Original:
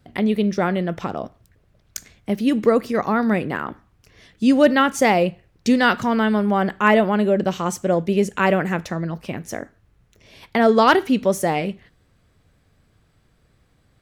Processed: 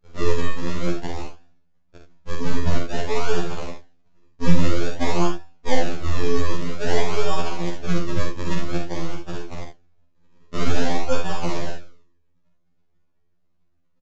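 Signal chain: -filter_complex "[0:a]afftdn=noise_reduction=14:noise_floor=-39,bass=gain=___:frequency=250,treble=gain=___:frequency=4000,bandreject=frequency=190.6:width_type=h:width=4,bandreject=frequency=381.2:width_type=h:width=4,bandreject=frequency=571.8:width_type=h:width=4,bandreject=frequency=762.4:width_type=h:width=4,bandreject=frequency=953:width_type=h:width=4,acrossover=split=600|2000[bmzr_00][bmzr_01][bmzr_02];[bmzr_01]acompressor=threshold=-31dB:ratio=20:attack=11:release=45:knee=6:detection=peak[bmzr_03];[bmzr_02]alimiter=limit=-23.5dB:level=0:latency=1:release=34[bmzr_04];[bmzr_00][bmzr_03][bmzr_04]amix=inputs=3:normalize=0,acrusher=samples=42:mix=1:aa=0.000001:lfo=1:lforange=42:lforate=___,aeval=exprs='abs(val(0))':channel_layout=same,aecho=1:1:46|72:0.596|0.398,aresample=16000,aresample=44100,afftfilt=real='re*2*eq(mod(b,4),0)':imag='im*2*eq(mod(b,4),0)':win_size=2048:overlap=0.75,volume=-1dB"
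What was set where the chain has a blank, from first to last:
3, -3, 0.51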